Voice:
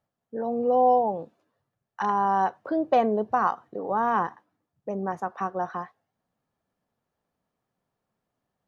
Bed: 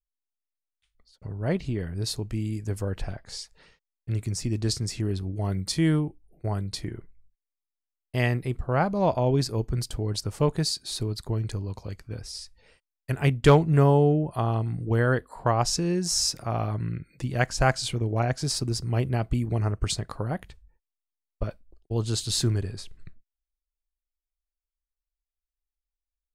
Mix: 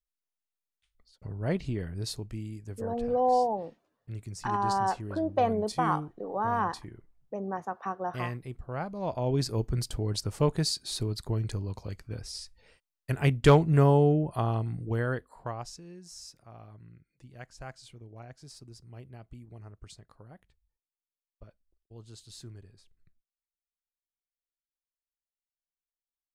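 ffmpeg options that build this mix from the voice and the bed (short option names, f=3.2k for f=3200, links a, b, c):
-filter_complex "[0:a]adelay=2450,volume=-4.5dB[a];[1:a]volume=6dB,afade=t=out:st=1.71:d=0.92:silence=0.398107,afade=t=in:st=9.02:d=0.51:silence=0.354813,afade=t=out:st=14.34:d=1.45:silence=0.105925[b];[a][b]amix=inputs=2:normalize=0"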